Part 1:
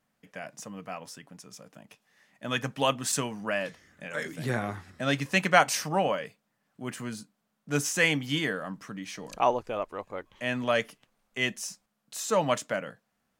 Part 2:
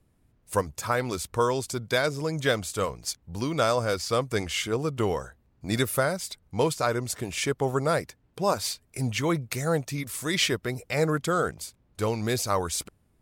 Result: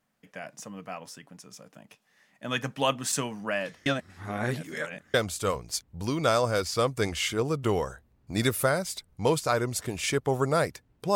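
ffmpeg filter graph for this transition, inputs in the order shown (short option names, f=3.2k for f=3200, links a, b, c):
-filter_complex "[0:a]apad=whole_dur=11.15,atrim=end=11.15,asplit=2[a][b];[a]atrim=end=3.862[c];[b]atrim=start=3.858:end=5.142,asetpts=PTS-STARTPTS,areverse[d];[1:a]atrim=start=2.478:end=8.49[e];[c][d]acrossfade=d=0.004:c1=hsin:c2=hsin[f];[f][e]acrossfade=d=0.004:c1=hsin:c2=hsin"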